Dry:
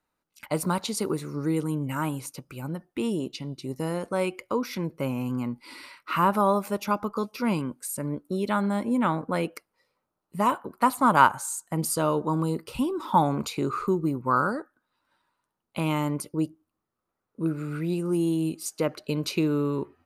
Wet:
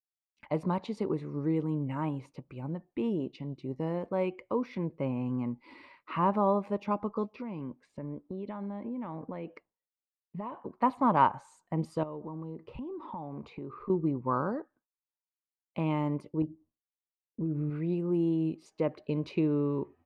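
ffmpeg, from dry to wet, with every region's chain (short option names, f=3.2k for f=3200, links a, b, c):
-filter_complex "[0:a]asettb=1/sr,asplit=3[a][b][c];[a]atrim=end=7.354[d];[b]atrim=start=7.35:end=10.58,asetpts=PTS-STARTPTS,afade=t=in:d=0.004:c=qsin,afade=t=out:st=3.226:d=0.004:c=qsin,lowpass=4.3k,acompressor=threshold=-31dB:ratio=6:attack=3.2:release=140:knee=1:detection=peak[e];[c]atrim=start=10.576[f];[d][e]acrossfade=d=0.004:c1=hsin:c2=qsin[g];[g][f]acrossfade=d=0.004:c1=qsin:c2=hsin,asettb=1/sr,asplit=3[h][i][j];[h]atrim=end=12.034[k];[i]atrim=start=12.03:end=13.9,asetpts=PTS-STARTPTS,afade=t=in:d=0.004:c=qsin,afade=t=out:st=1.866:d=0.004:c=qsin,aemphasis=mode=reproduction:type=75kf,acompressor=threshold=-34dB:ratio=5:attack=3.2:release=140:knee=1:detection=peak[l];[j]atrim=start=13.896[m];[k][l]acrossfade=d=0.004:c1=hsin:c2=qsin[n];[n][m]acrossfade=d=0.004:c1=qsin:c2=hsin,asettb=1/sr,asplit=3[o][p][q];[o]atrim=end=16.424[r];[p]atrim=start=16.42:end=17.7,asetpts=PTS-STARTPTS,afade=t=in:d=0.004:c=qsin,afade=t=out:st=1.276:d=0.004:c=qsin,tiltshelf=f=700:g=6.5,acompressor=threshold=-27dB:ratio=5:attack=3.2:release=140:knee=1:detection=peak,asplit=2[s][t];[t]adelay=13,volume=-9.5dB[u];[s][u]amix=inputs=2:normalize=0,atrim=end_sample=56448[v];[q]atrim=start=17.696[w];[r][v]acrossfade=d=0.004:c1=hsin:c2=qsin[x];[x][w]acrossfade=d=0.004:c1=qsin:c2=hsin,agate=range=-33dB:threshold=-51dB:ratio=3:detection=peak,lowpass=1.9k,equalizer=f=1.4k:t=o:w=0.35:g=-12.5,volume=-3dB"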